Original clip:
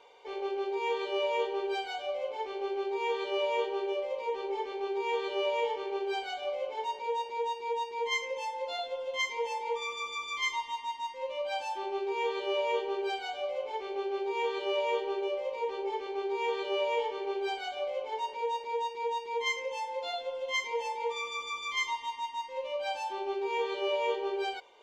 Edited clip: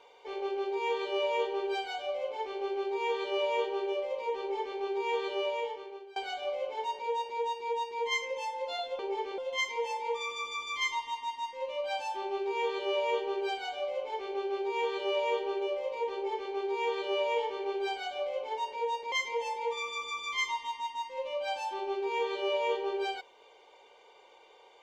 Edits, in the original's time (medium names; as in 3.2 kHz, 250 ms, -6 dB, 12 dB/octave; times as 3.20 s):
5.27–6.16 s: fade out, to -23.5 dB
15.74–16.13 s: copy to 8.99 s
18.73–20.51 s: delete